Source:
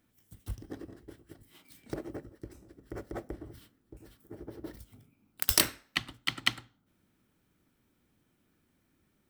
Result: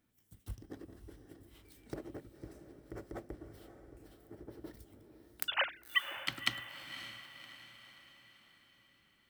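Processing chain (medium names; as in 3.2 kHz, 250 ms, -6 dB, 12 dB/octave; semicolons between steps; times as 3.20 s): 5.48–6.17 s: formants replaced by sine waves; echo that smears into a reverb 556 ms, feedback 48%, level -10 dB; trim -5.5 dB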